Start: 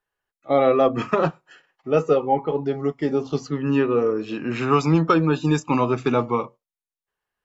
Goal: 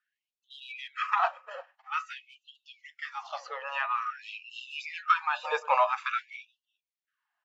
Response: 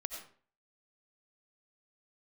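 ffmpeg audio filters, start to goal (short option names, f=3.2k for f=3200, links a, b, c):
-filter_complex "[0:a]acrossover=split=540|1800[a][b][c];[b]alimiter=limit=-18dB:level=0:latency=1:release=132[d];[a][d][c]amix=inputs=3:normalize=0,asplit=2[e][f];[f]adelay=349.9,volume=-22dB,highshelf=f=4k:g=-7.87[g];[e][g]amix=inputs=2:normalize=0,acrossover=split=3800[h][i];[i]acompressor=threshold=-48dB:ratio=4:attack=1:release=60[j];[h][j]amix=inputs=2:normalize=0,asplit=2[k][l];[l]asoftclip=type=hard:threshold=-15dB,volume=-7dB[m];[k][m]amix=inputs=2:normalize=0,aemphasis=mode=reproduction:type=75fm,afftfilt=real='re*gte(b*sr/1024,460*pow(2700/460,0.5+0.5*sin(2*PI*0.49*pts/sr)))':imag='im*gte(b*sr/1024,460*pow(2700/460,0.5+0.5*sin(2*PI*0.49*pts/sr)))':win_size=1024:overlap=0.75"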